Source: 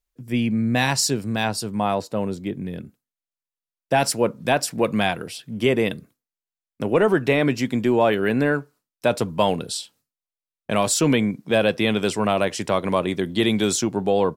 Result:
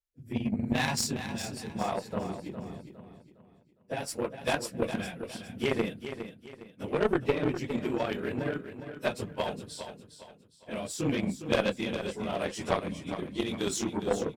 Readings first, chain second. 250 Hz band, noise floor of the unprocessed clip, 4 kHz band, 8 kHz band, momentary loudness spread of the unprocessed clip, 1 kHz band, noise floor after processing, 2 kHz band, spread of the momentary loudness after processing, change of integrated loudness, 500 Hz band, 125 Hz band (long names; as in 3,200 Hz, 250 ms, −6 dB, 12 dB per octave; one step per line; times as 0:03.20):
−10.0 dB, below −85 dBFS, −10.5 dB, −11.5 dB, 11 LU, −11.0 dB, −61 dBFS, −10.5 dB, 14 LU, −10.5 dB, −10.5 dB, −10.0 dB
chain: random phases in long frames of 50 ms
in parallel at +1.5 dB: downward compressor, threshold −27 dBFS, peak gain reduction 15 dB
on the sum: gain on a spectral selection 0:12.88–0:13.18, 310–2,100 Hz −17 dB
rotating-speaker cabinet horn 0.85 Hz
harmonic generator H 3 −15 dB, 4 −15 dB, 6 −20 dB, 7 −37 dB, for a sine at −4 dBFS
on a send: repeating echo 409 ms, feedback 36%, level −10 dB
on the sum: level −6.5 dB